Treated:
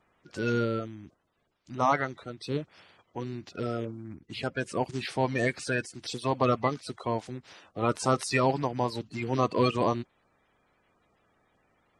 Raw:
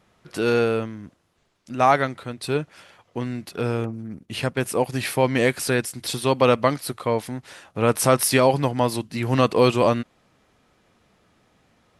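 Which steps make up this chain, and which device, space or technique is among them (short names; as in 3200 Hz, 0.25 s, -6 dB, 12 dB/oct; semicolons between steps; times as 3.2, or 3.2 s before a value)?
clip after many re-uploads (LPF 7800 Hz 24 dB/oct; bin magnitudes rounded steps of 30 dB); gain -7 dB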